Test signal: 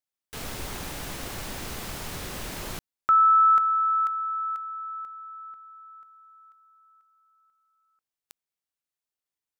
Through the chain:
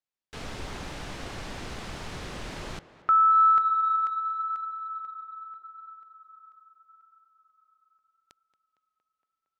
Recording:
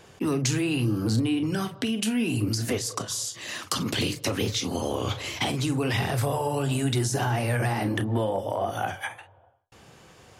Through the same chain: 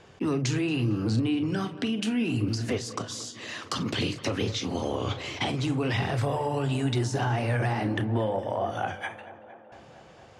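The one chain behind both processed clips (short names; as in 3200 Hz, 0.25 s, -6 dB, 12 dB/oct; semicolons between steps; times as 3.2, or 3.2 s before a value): air absorption 84 m; on a send: tape echo 0.23 s, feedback 84%, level -17 dB, low-pass 2900 Hz; on the sum: gain -1 dB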